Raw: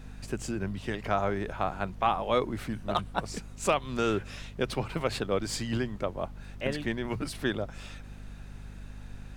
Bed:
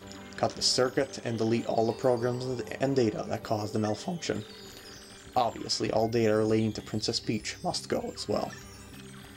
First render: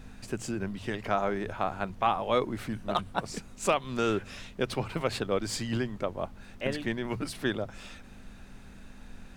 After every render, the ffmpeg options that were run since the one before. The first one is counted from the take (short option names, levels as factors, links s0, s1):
-af "bandreject=f=50:t=h:w=4,bandreject=f=100:t=h:w=4,bandreject=f=150:t=h:w=4"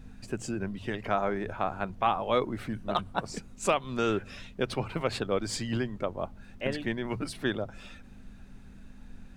-af "afftdn=nr=7:nf=-49"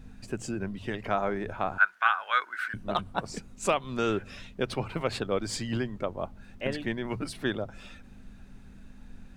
-filter_complex "[0:a]asettb=1/sr,asplit=3[s0][s1][s2];[s0]atrim=end=1.784[s3];[s1]atrim=start=1.78:end=2.74,asetpts=PTS-STARTPTS,afade=t=in:d=0.004:c=qsin,afade=t=out:st=0.956:d=0.004:c=qsin,highpass=f=1500:t=q:w=12[s4];[s2]atrim=start=2.736[s5];[s3][s4]acrossfade=d=0.004:c1=hsin:c2=qsin[s6];[s6][s5]acrossfade=d=0.004:c1=qsin:c2=hsin"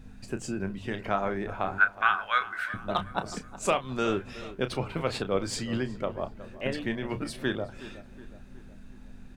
-filter_complex "[0:a]asplit=2[s0][s1];[s1]adelay=31,volume=0.299[s2];[s0][s2]amix=inputs=2:normalize=0,asplit=2[s3][s4];[s4]adelay=368,lowpass=f=2300:p=1,volume=0.168,asplit=2[s5][s6];[s6]adelay=368,lowpass=f=2300:p=1,volume=0.52,asplit=2[s7][s8];[s8]adelay=368,lowpass=f=2300:p=1,volume=0.52,asplit=2[s9][s10];[s10]adelay=368,lowpass=f=2300:p=1,volume=0.52,asplit=2[s11][s12];[s12]adelay=368,lowpass=f=2300:p=1,volume=0.52[s13];[s3][s5][s7][s9][s11][s13]amix=inputs=6:normalize=0"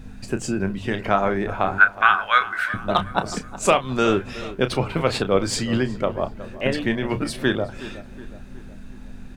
-af "volume=2.66,alimiter=limit=0.794:level=0:latency=1"